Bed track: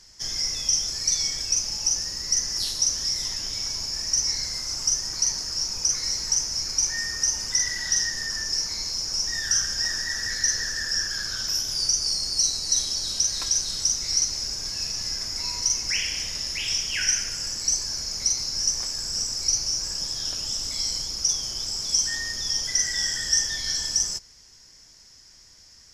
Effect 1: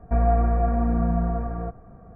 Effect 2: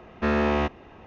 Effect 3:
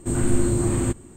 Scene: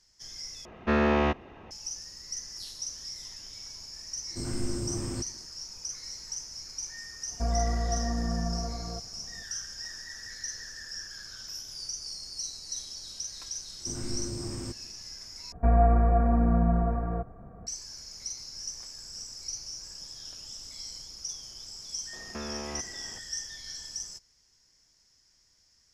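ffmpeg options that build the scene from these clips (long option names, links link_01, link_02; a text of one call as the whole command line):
ffmpeg -i bed.wav -i cue0.wav -i cue1.wav -i cue2.wav -filter_complex "[2:a]asplit=2[link_01][link_02];[3:a]asplit=2[link_03][link_04];[1:a]asplit=2[link_05][link_06];[0:a]volume=-14dB[link_07];[link_02]acompressor=threshold=-31dB:ratio=6:attack=3.2:release=140:knee=1:detection=peak[link_08];[link_07]asplit=3[link_09][link_10][link_11];[link_09]atrim=end=0.654[link_12];[link_01]atrim=end=1.06,asetpts=PTS-STARTPTS,volume=-1dB[link_13];[link_10]atrim=start=1.706:end=15.524[link_14];[link_06]atrim=end=2.15,asetpts=PTS-STARTPTS,volume=-1dB[link_15];[link_11]atrim=start=17.666[link_16];[link_03]atrim=end=1.16,asetpts=PTS-STARTPTS,volume=-12dB,afade=type=in:duration=0.004:curve=hsin,afade=type=out:start_time=1.156:duration=0.004:curve=hsin,adelay=4300[link_17];[link_05]atrim=end=2.15,asetpts=PTS-STARTPTS,volume=-8dB,afade=type=in:duration=0.004:curve=hsin,afade=type=out:start_time=2.146:duration=0.004:curve=hsin,adelay=7290[link_18];[link_04]atrim=end=1.16,asetpts=PTS-STARTPTS,volume=-15dB,afade=type=in:duration=0.004:curve=hsin,afade=type=out:start_time=1.156:duration=0.004:curve=hsin,adelay=608580S[link_19];[link_08]atrim=end=1.06,asetpts=PTS-STARTPTS,volume=-4dB,afade=type=in:duration=0.004:curve=hsin,afade=type=out:start_time=1.056:duration=0.004:curve=hsin,adelay=22130[link_20];[link_12][link_13]acrossfade=duration=0.004:curve1=hsin:curve2=hsin[link_21];[link_21][link_14]acrossfade=duration=0.004:curve1=hsin:curve2=hsin[link_22];[link_22][link_15]acrossfade=duration=0.004:curve1=hsin:curve2=hsin[link_23];[link_23][link_16]acrossfade=duration=0.004:curve1=hsin:curve2=hsin[link_24];[link_24][link_17][link_18][link_19][link_20]amix=inputs=5:normalize=0" out.wav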